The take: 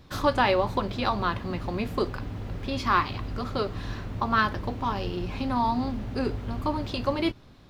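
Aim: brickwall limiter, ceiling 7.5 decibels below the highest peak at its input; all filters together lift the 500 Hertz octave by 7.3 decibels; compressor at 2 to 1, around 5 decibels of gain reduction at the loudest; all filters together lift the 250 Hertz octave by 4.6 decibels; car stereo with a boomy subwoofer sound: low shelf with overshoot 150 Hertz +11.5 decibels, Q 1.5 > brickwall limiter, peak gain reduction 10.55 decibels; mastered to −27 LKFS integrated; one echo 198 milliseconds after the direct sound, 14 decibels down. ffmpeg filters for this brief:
ffmpeg -i in.wav -af "equalizer=frequency=250:width_type=o:gain=5.5,equalizer=frequency=500:width_type=o:gain=8.5,acompressor=threshold=-21dB:ratio=2,alimiter=limit=-17dB:level=0:latency=1,lowshelf=frequency=150:width_type=q:width=1.5:gain=11.5,aecho=1:1:198:0.2,volume=2.5dB,alimiter=limit=-18.5dB:level=0:latency=1" out.wav

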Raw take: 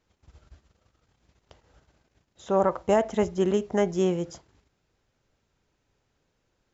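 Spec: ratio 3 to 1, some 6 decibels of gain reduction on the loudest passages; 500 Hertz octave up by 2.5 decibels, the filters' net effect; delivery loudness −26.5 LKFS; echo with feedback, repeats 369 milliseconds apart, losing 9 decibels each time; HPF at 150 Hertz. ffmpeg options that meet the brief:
ffmpeg -i in.wav -af "highpass=150,equalizer=frequency=500:width_type=o:gain=3.5,acompressor=threshold=-23dB:ratio=3,aecho=1:1:369|738|1107|1476:0.355|0.124|0.0435|0.0152,volume=2dB" out.wav

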